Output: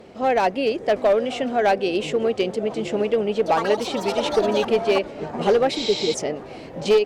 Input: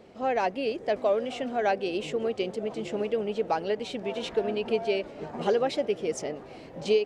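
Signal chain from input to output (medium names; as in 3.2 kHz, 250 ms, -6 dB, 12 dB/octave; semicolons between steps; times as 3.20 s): one-sided clip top -20.5 dBFS; 3.35–5.51 s: ever faster or slower copies 109 ms, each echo +6 st, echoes 2, each echo -6 dB; 5.79–6.11 s: spectral replace 490–8000 Hz before; trim +7.5 dB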